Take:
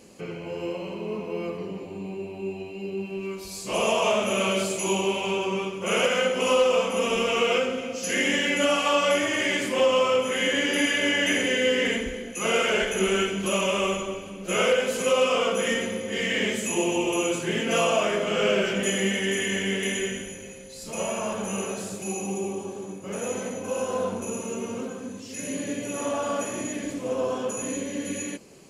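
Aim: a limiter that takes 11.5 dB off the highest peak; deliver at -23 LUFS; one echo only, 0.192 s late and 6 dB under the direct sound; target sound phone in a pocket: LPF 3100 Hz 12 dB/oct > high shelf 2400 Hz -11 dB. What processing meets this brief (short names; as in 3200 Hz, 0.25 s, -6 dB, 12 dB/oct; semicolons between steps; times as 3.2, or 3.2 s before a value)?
limiter -23.5 dBFS; LPF 3100 Hz 12 dB/oct; high shelf 2400 Hz -11 dB; echo 0.192 s -6 dB; gain +10 dB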